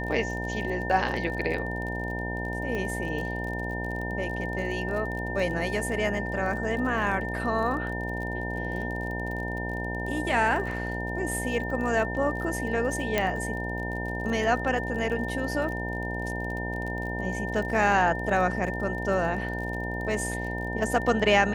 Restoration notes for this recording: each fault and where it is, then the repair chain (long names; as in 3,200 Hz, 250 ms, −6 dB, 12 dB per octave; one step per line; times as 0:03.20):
mains buzz 60 Hz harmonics 16 −33 dBFS
surface crackle 37 per second −34 dBFS
whistle 1,800 Hz −34 dBFS
0:02.75: click −21 dBFS
0:13.18: click −10 dBFS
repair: click removal
notch filter 1,800 Hz, Q 30
hum removal 60 Hz, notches 16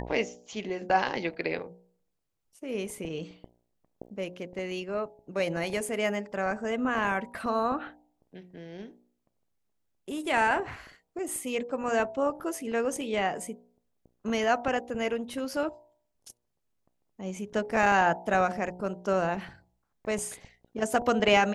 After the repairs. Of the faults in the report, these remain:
none of them is left